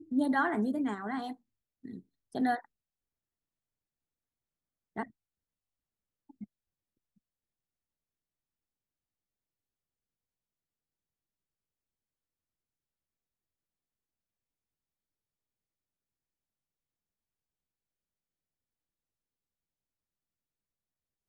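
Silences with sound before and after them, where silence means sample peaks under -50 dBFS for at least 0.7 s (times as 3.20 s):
2.65–4.96 s
5.07–6.30 s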